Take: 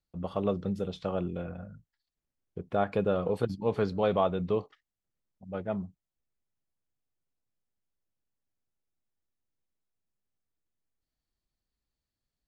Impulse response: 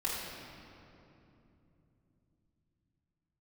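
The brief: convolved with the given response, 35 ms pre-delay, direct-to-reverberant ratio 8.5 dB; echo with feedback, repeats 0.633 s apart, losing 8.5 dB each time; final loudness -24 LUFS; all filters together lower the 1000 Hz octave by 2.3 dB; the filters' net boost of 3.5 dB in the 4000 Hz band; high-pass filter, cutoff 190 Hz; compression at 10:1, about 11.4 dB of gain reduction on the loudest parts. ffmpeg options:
-filter_complex "[0:a]highpass=190,equalizer=f=1k:t=o:g=-3.5,equalizer=f=4k:t=o:g=4.5,acompressor=threshold=-35dB:ratio=10,aecho=1:1:633|1266|1899|2532:0.376|0.143|0.0543|0.0206,asplit=2[a][b];[1:a]atrim=start_sample=2205,adelay=35[c];[b][c]afir=irnorm=-1:irlink=0,volume=-14.5dB[d];[a][d]amix=inputs=2:normalize=0,volume=17.5dB"

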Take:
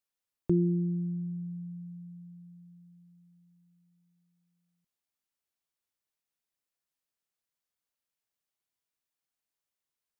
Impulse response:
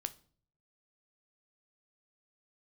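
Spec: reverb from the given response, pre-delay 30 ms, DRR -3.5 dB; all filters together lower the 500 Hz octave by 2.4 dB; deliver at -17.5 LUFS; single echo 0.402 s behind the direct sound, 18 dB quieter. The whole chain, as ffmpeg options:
-filter_complex "[0:a]equalizer=f=500:t=o:g=-5,aecho=1:1:402:0.126,asplit=2[a][b];[1:a]atrim=start_sample=2205,adelay=30[c];[b][c]afir=irnorm=-1:irlink=0,volume=4.5dB[d];[a][d]amix=inputs=2:normalize=0,volume=13dB"

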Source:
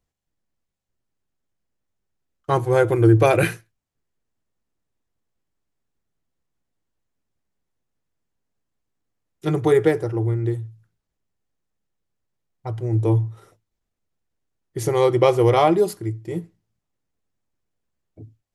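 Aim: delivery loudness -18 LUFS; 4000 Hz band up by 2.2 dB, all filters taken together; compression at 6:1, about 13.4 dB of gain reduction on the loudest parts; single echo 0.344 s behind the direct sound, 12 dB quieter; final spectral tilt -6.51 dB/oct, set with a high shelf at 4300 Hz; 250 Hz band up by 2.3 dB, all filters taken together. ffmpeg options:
-af "equalizer=f=250:t=o:g=4,equalizer=f=4k:t=o:g=6,highshelf=f=4.3k:g=-6,acompressor=threshold=-23dB:ratio=6,aecho=1:1:344:0.251,volume=10dB"

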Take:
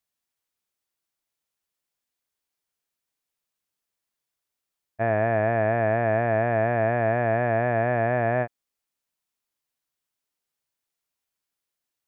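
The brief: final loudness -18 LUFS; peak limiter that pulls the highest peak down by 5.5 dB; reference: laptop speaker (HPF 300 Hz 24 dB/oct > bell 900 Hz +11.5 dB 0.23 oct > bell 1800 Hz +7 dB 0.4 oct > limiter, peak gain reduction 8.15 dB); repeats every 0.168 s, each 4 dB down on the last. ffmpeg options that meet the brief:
-af "alimiter=limit=-17dB:level=0:latency=1,highpass=f=300:w=0.5412,highpass=f=300:w=1.3066,equalizer=f=900:t=o:w=0.23:g=11.5,equalizer=f=1.8k:t=o:w=0.4:g=7,aecho=1:1:168|336|504|672|840|1008|1176|1344|1512:0.631|0.398|0.25|0.158|0.0994|0.0626|0.0394|0.0249|0.0157,volume=11dB,alimiter=limit=-9dB:level=0:latency=1"

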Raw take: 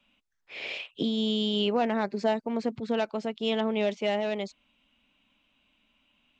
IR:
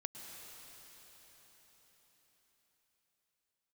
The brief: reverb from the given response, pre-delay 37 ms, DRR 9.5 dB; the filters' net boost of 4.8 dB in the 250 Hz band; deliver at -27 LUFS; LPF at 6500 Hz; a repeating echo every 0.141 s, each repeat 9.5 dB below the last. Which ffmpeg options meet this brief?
-filter_complex "[0:a]lowpass=6.5k,equalizer=f=250:t=o:g=5.5,aecho=1:1:141|282|423|564:0.335|0.111|0.0365|0.012,asplit=2[a][b];[1:a]atrim=start_sample=2205,adelay=37[c];[b][c]afir=irnorm=-1:irlink=0,volume=-7.5dB[d];[a][d]amix=inputs=2:normalize=0,volume=-1.5dB"

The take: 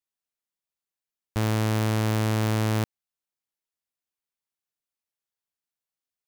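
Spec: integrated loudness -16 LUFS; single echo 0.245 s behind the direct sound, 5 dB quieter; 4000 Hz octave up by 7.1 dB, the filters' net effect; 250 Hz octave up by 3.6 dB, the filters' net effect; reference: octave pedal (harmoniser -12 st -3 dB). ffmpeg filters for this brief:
-filter_complex "[0:a]equalizer=f=250:t=o:g=4.5,equalizer=f=4k:t=o:g=9,aecho=1:1:245:0.562,asplit=2[a][b];[b]asetrate=22050,aresample=44100,atempo=2,volume=-3dB[c];[a][c]amix=inputs=2:normalize=0,volume=6dB"

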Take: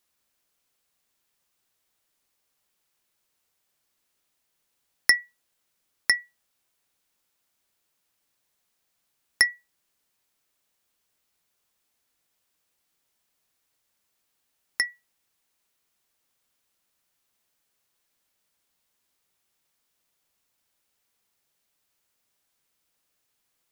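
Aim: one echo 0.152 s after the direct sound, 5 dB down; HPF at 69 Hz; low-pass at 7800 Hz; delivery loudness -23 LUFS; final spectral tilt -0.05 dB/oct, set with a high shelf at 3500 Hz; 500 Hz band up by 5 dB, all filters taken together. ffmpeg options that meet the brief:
-af "highpass=69,lowpass=7.8k,equalizer=f=500:t=o:g=6.5,highshelf=f=3.5k:g=-9,aecho=1:1:152:0.562,volume=4.5dB"

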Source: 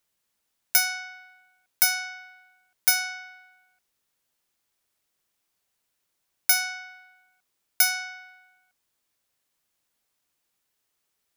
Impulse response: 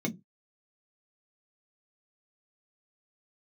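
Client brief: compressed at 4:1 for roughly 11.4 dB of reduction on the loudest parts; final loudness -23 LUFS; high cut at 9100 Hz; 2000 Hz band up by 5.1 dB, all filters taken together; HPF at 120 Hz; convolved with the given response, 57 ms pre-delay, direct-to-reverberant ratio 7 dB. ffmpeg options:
-filter_complex "[0:a]highpass=120,lowpass=9.1k,equalizer=f=2k:t=o:g=7,acompressor=threshold=-30dB:ratio=4,asplit=2[a][b];[1:a]atrim=start_sample=2205,adelay=57[c];[b][c]afir=irnorm=-1:irlink=0,volume=-11.5dB[d];[a][d]amix=inputs=2:normalize=0,volume=8dB"

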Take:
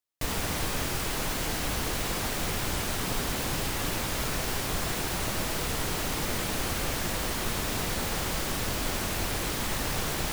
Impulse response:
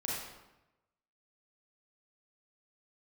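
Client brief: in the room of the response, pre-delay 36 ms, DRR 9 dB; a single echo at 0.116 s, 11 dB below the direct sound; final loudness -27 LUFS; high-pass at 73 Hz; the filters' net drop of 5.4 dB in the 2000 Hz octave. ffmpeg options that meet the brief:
-filter_complex "[0:a]highpass=73,equalizer=f=2k:t=o:g=-7,aecho=1:1:116:0.282,asplit=2[a][b];[1:a]atrim=start_sample=2205,adelay=36[c];[b][c]afir=irnorm=-1:irlink=0,volume=-12.5dB[d];[a][d]amix=inputs=2:normalize=0,volume=3dB"

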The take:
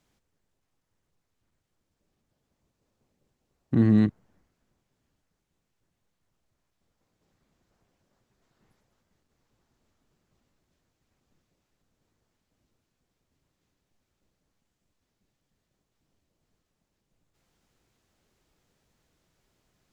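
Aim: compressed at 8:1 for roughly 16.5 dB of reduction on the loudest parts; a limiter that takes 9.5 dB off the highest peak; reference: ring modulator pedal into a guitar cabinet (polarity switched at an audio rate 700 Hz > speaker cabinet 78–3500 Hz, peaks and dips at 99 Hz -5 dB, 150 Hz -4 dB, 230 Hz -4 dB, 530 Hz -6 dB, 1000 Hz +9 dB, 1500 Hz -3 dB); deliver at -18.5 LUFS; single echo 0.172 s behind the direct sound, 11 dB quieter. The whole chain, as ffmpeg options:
-af "acompressor=threshold=-33dB:ratio=8,alimiter=level_in=7.5dB:limit=-24dB:level=0:latency=1,volume=-7.5dB,aecho=1:1:172:0.282,aeval=exprs='val(0)*sgn(sin(2*PI*700*n/s))':c=same,highpass=78,equalizer=f=99:t=q:w=4:g=-5,equalizer=f=150:t=q:w=4:g=-4,equalizer=f=230:t=q:w=4:g=-4,equalizer=f=530:t=q:w=4:g=-6,equalizer=f=1k:t=q:w=4:g=9,equalizer=f=1.5k:t=q:w=4:g=-3,lowpass=f=3.5k:w=0.5412,lowpass=f=3.5k:w=1.3066,volume=21.5dB"

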